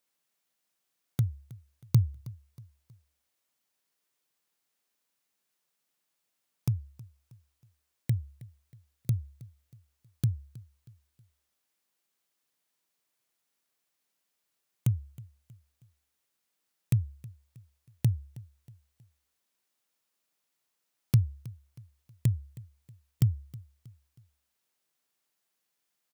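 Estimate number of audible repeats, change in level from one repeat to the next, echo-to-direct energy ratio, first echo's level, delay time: 2, -7.5 dB, -19.0 dB, -20.0 dB, 318 ms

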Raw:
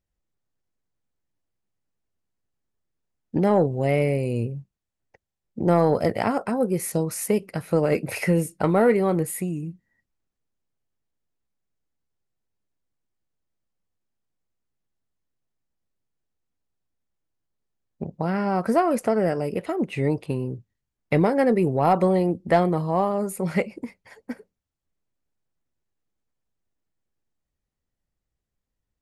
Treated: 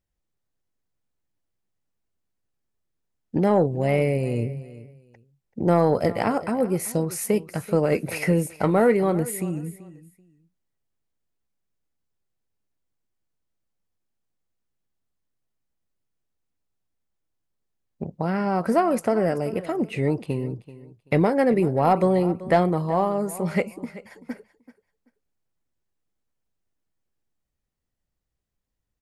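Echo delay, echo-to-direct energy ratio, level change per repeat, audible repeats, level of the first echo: 384 ms, -17.0 dB, -13.5 dB, 2, -17.0 dB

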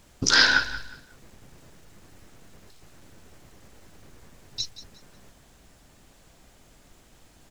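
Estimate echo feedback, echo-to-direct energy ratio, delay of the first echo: 28%, -14.0 dB, 181 ms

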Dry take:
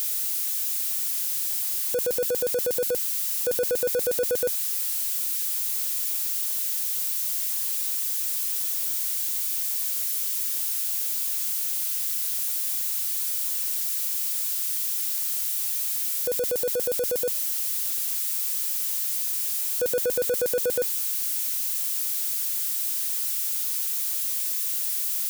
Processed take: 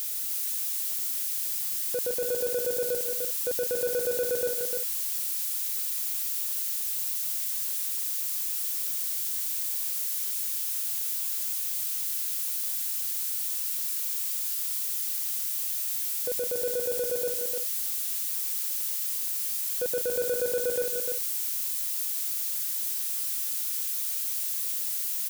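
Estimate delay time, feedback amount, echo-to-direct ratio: 153 ms, no regular repeats, -3.0 dB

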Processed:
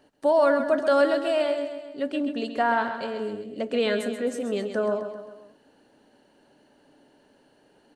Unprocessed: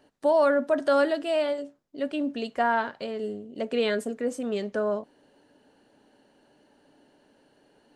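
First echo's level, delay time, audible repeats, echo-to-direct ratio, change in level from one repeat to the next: -9.0 dB, 132 ms, 4, -7.5 dB, -5.5 dB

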